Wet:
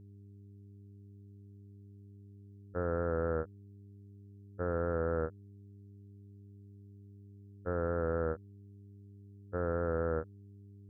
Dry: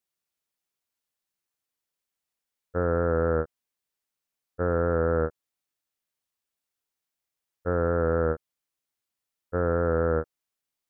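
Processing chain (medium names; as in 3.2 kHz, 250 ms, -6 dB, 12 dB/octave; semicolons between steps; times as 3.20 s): mains buzz 100 Hz, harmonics 4, -45 dBFS -8 dB/octave; trim -8.5 dB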